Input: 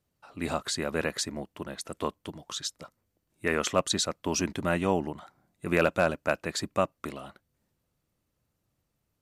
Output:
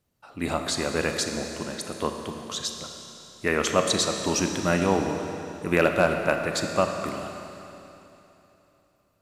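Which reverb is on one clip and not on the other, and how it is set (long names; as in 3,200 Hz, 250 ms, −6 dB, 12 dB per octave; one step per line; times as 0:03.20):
four-comb reverb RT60 3.2 s, combs from 27 ms, DRR 4.5 dB
level +3 dB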